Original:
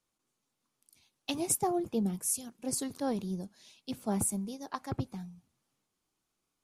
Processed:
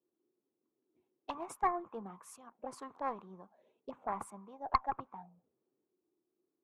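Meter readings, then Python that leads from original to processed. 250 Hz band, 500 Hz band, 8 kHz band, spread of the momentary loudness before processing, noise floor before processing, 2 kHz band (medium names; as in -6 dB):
-15.0 dB, -7.5 dB, -23.0 dB, 14 LU, -84 dBFS, 0.0 dB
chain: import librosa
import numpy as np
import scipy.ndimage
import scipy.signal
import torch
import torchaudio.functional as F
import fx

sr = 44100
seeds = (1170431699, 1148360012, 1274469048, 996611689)

y = fx.wiener(x, sr, points=9)
y = fx.auto_wah(y, sr, base_hz=360.0, top_hz=1100.0, q=6.1, full_db=-34.0, direction='up')
y = fx.cheby_harmonics(y, sr, harmonics=(4,), levels_db=(-17,), full_scale_db=-27.0)
y = y * 10.0 ** (12.5 / 20.0)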